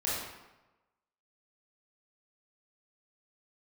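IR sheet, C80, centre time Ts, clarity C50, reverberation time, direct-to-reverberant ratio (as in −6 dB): 2.0 dB, 80 ms, −1.0 dB, 1.1 s, −8.0 dB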